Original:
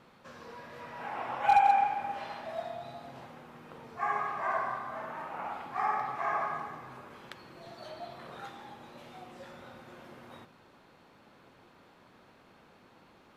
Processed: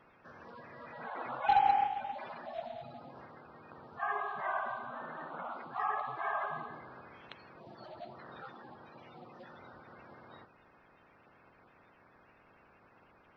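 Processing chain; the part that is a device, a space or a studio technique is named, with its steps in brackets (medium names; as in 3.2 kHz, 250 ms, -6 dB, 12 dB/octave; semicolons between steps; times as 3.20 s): clip after many re-uploads (low-pass 4.1 kHz 24 dB/octave; coarse spectral quantiser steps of 30 dB); trim -3 dB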